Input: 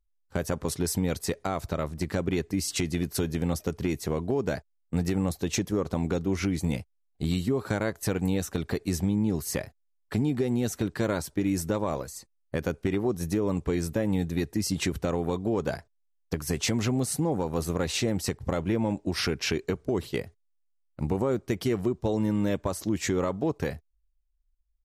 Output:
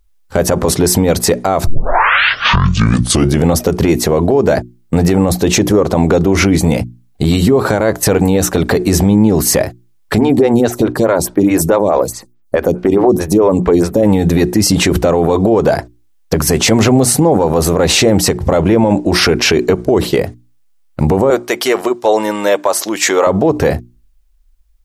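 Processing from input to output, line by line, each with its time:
1.67 tape start 1.84 s
10.18–14.03 photocell phaser 4.7 Hz
21.3–23.27 HPF 640 Hz
whole clip: notches 60/120/180/240/300/360 Hz; dynamic EQ 630 Hz, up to +8 dB, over -42 dBFS, Q 0.72; maximiser +22 dB; gain -1 dB

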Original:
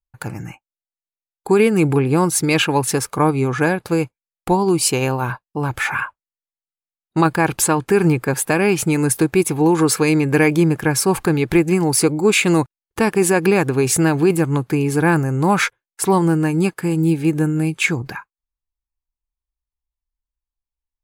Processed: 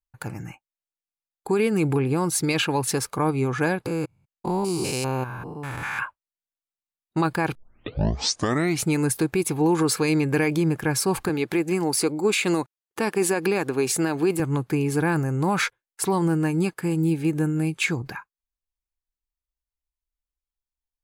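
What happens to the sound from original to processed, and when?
3.86–5.99 stepped spectrum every 0.2 s
7.55 tape start 1.30 s
11.29–14.4 HPF 210 Hz
whole clip: dynamic EQ 4300 Hz, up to +4 dB, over -38 dBFS, Q 2.6; limiter -8 dBFS; gain -5 dB

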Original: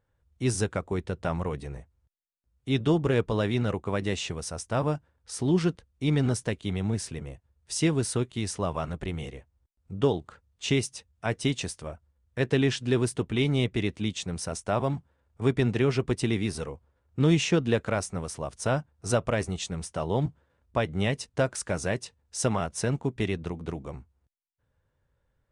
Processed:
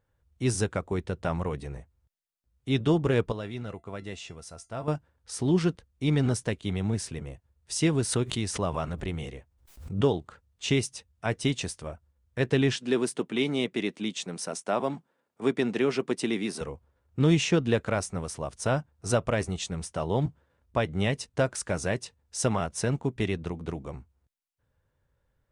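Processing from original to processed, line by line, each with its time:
3.32–4.88 resonator 680 Hz, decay 0.18 s, mix 70%
7.85–10.04 backwards sustainer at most 96 dB/s
12.76–16.61 HPF 190 Hz 24 dB/oct

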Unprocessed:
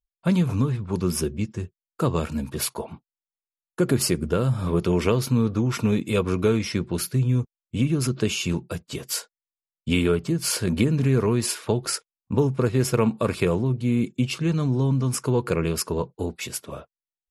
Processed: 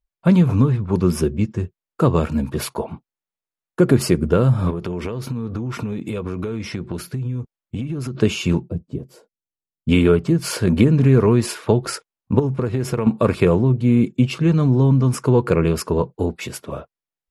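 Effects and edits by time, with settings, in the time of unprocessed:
4.7–8.15 compressor 16:1, threshold -28 dBFS
8.68–9.89 EQ curve 280 Hz 0 dB, 710 Hz -12 dB, 1400 Hz -23 dB
12.39–13.07 compressor, threshold -23 dBFS
whole clip: high shelf 2900 Hz -11 dB; gain +7 dB

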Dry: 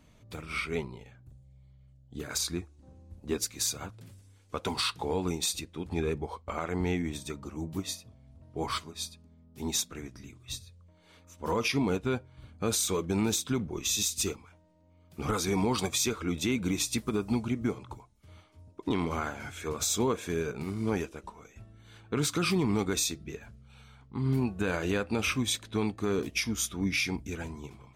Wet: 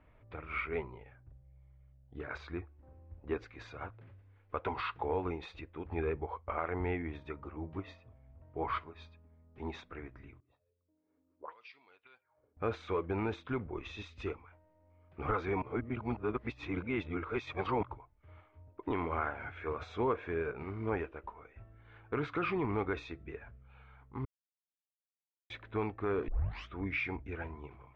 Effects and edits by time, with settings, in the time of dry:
10.4–12.57 auto-wah 250–4600 Hz, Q 5, up, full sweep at -26 dBFS
15.62–17.83 reverse
24.25–25.5 mute
26.28 tape start 0.40 s
whole clip: LPF 2200 Hz 24 dB/oct; bell 190 Hz -12.5 dB 1.2 oct

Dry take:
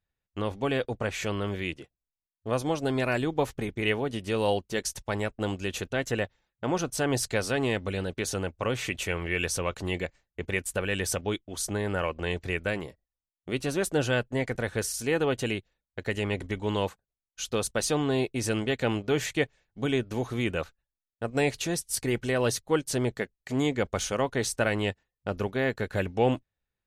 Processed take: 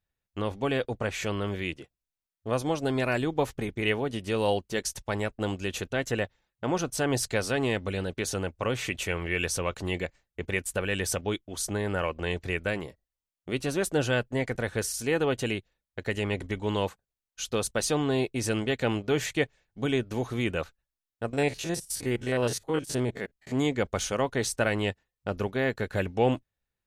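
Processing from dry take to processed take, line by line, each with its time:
21.33–23.52 stepped spectrum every 50 ms

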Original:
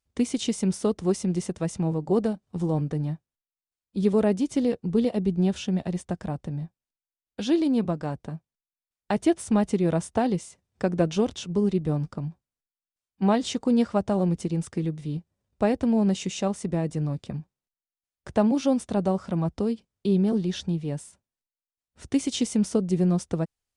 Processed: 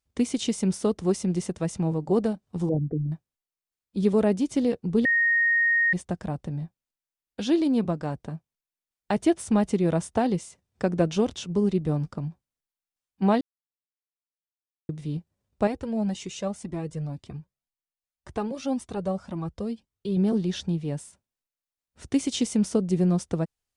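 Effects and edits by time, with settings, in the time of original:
2.69–3.12 formant sharpening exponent 3
5.05–5.93 bleep 1860 Hz -18.5 dBFS
13.41–14.89 mute
15.67–20.17 cascading flanger rising 1.9 Hz

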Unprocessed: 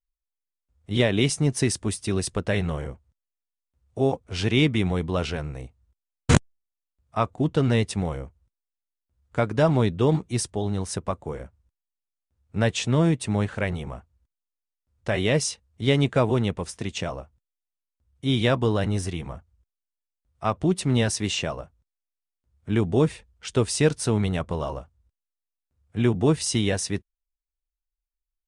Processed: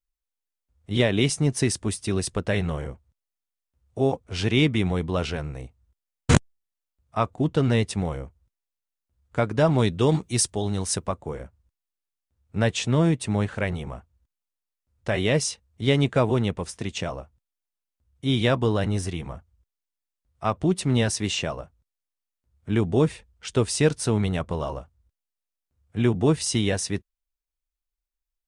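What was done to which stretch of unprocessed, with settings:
9.78–11.07 high shelf 2800 Hz +8 dB

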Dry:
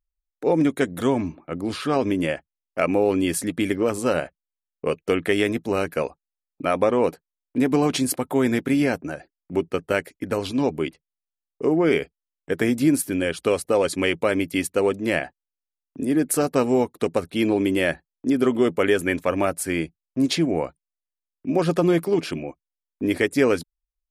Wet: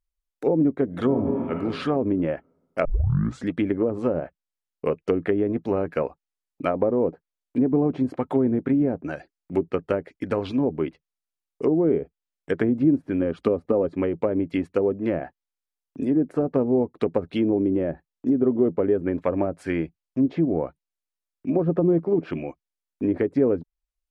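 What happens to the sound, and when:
0.85–1.59 reverb throw, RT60 1.6 s, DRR 2.5 dB
2.85 tape start 0.63 s
13.2–13.86 small resonant body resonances 240/1200 Hz, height 6 dB, ringing for 40 ms
whole clip: treble ducked by the level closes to 540 Hz, closed at -17 dBFS

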